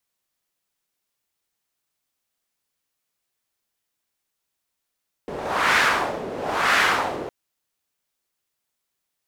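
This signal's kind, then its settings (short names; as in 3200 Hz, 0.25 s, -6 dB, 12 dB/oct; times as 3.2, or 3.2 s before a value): wind-like swept noise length 2.01 s, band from 430 Hz, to 1700 Hz, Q 1.6, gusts 2, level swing 13.5 dB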